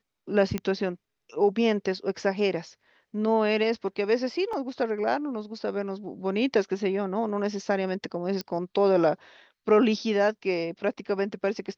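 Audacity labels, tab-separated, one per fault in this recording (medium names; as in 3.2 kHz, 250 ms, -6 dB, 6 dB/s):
0.580000	0.580000	pop -16 dBFS
4.530000	4.530000	dropout 3.9 ms
8.410000	8.410000	pop -18 dBFS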